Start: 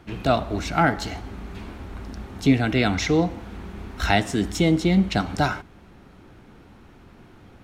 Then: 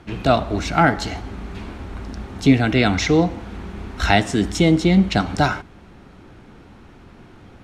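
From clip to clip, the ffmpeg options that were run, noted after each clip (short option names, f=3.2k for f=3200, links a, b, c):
-af "lowpass=10k,volume=4dB"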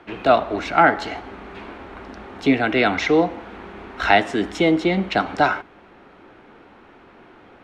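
-filter_complex "[0:a]acrossover=split=290 3400:gain=0.141 1 0.178[a][b][c];[a][b][c]amix=inputs=3:normalize=0,volume=2.5dB"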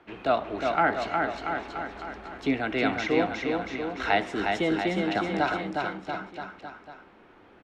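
-af "aecho=1:1:360|684|975.6|1238|1474:0.631|0.398|0.251|0.158|0.1,volume=-9dB"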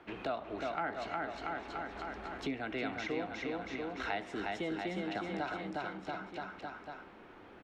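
-af "acompressor=threshold=-40dB:ratio=2.5"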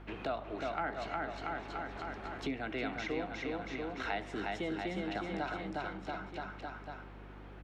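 -af "aeval=exprs='val(0)+0.00316*(sin(2*PI*50*n/s)+sin(2*PI*2*50*n/s)/2+sin(2*PI*3*50*n/s)/3+sin(2*PI*4*50*n/s)/4+sin(2*PI*5*50*n/s)/5)':c=same"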